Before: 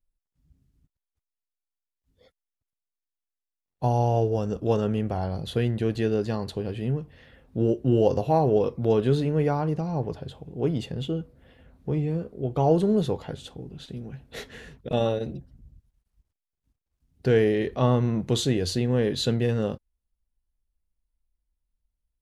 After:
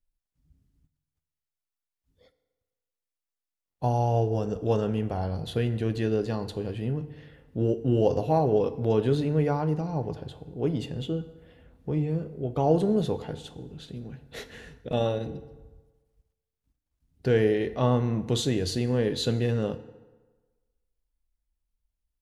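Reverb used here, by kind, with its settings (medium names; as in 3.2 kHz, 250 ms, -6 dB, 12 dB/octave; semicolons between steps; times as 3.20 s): FDN reverb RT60 1.3 s, low-frequency decay 0.9×, high-frequency decay 0.7×, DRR 12 dB; trim -2 dB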